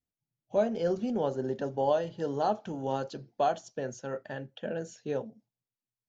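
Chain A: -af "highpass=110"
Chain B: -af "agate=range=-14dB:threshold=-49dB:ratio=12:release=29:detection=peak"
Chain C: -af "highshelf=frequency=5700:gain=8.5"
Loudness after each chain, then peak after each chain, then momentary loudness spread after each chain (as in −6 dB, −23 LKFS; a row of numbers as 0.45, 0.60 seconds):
−32.5, −32.5, −32.0 LKFS; −14.5, −15.0, −15.0 dBFS; 10, 10, 10 LU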